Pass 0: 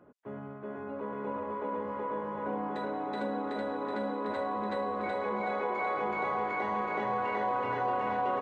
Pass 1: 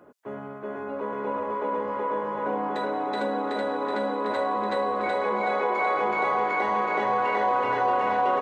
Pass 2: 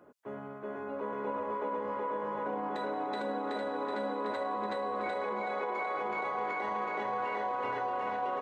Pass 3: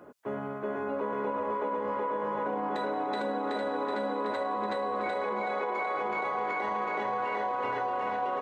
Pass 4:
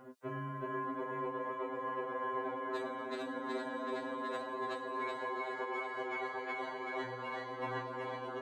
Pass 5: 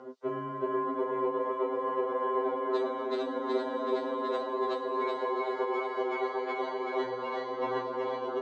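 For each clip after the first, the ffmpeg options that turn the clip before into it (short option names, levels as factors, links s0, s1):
-af "bass=f=250:g=-8,treble=f=4000:g=4,volume=2.37"
-af "alimiter=limit=0.0944:level=0:latency=1:release=60,volume=0.531"
-af "acompressor=threshold=0.0158:ratio=4,volume=2.37"
-af "afftfilt=real='re*2.45*eq(mod(b,6),0)':imag='im*2.45*eq(mod(b,6),0)':win_size=2048:overlap=0.75,volume=1.12"
-af "highpass=230,equalizer=f=430:t=q:w=4:g=9,equalizer=f=1700:t=q:w=4:g=-8,equalizer=f=2500:t=q:w=4:g=-7,lowpass=f=5900:w=0.5412,lowpass=f=5900:w=1.3066,volume=2.11"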